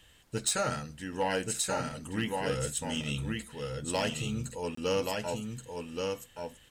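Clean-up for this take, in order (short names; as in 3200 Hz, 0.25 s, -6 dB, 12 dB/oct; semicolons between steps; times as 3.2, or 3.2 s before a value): clip repair -22 dBFS; interpolate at 4.75, 24 ms; expander -44 dBFS, range -21 dB; inverse comb 1.127 s -4 dB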